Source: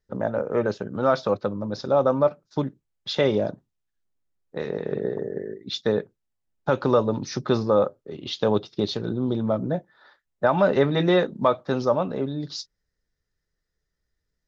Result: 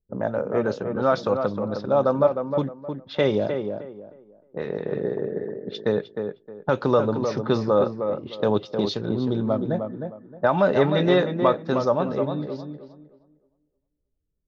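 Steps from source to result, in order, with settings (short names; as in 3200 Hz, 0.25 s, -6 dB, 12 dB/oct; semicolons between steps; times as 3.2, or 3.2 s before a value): low-pass opened by the level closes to 400 Hz, open at -21 dBFS; tape echo 0.309 s, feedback 29%, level -5 dB, low-pass 1500 Hz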